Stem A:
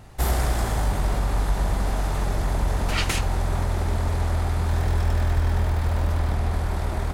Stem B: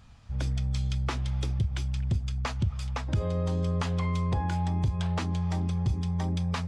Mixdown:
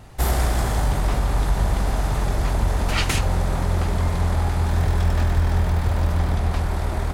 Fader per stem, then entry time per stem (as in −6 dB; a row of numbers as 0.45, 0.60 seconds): +2.0, −3.0 decibels; 0.00, 0.00 seconds